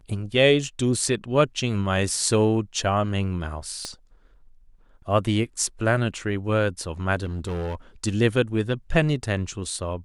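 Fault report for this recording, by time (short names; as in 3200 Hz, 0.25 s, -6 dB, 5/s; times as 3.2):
3.85 pop -17 dBFS
7.24–7.75 clipped -25.5 dBFS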